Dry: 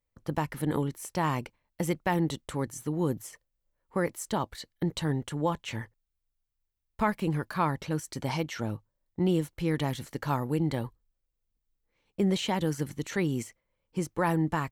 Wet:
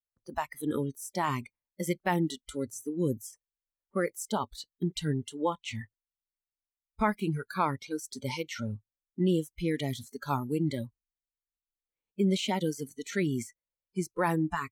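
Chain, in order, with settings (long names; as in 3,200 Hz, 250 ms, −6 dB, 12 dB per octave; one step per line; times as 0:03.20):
noise reduction from a noise print of the clip's start 23 dB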